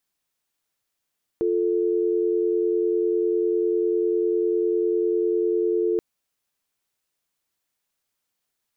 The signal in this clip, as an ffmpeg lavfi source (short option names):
-f lavfi -i "aevalsrc='0.0794*(sin(2*PI*350*t)+sin(2*PI*440*t))':d=4.58:s=44100"